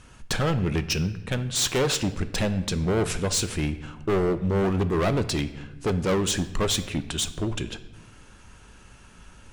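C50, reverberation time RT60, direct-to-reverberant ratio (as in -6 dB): 14.0 dB, 1.0 s, 10.5 dB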